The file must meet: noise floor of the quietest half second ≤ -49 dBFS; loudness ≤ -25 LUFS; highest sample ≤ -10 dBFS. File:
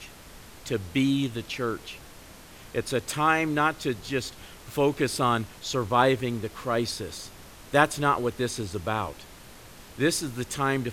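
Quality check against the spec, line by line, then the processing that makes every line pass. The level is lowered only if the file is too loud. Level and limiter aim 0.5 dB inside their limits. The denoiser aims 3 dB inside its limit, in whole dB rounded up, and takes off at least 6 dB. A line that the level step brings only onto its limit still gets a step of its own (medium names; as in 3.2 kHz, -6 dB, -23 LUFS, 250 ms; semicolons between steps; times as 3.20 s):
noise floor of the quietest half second -47 dBFS: fail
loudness -27.0 LUFS: pass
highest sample -6.0 dBFS: fail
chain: noise reduction 6 dB, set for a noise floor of -47 dBFS; peak limiter -10.5 dBFS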